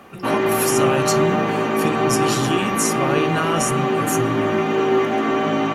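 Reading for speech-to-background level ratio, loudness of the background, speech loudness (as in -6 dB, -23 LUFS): -4.5 dB, -20.0 LUFS, -24.5 LUFS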